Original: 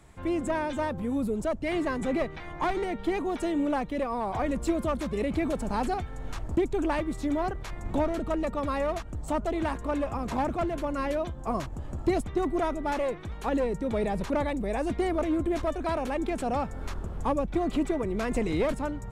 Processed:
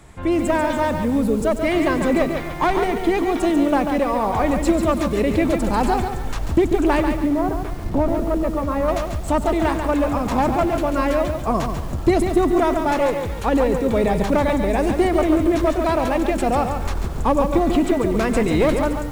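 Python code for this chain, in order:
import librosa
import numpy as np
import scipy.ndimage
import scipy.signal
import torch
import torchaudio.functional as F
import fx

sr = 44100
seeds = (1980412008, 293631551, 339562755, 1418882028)

y = fx.spacing_loss(x, sr, db_at_10k=40, at=(7.12, 8.88))
y = fx.echo_feedback(y, sr, ms=96, feedback_pct=53, wet_db=-17.5)
y = fx.echo_crushed(y, sr, ms=141, feedback_pct=35, bits=8, wet_db=-6.0)
y = y * 10.0 ** (9.0 / 20.0)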